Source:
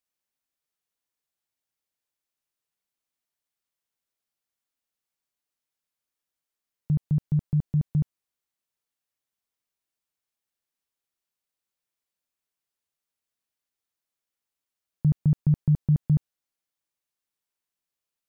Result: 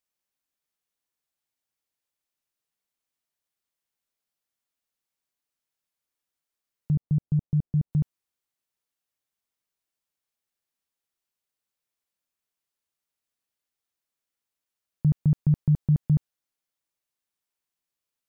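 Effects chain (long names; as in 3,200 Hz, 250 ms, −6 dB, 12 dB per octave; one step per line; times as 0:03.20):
0:06.95–0:07.93: Bessel low-pass filter 590 Hz, order 2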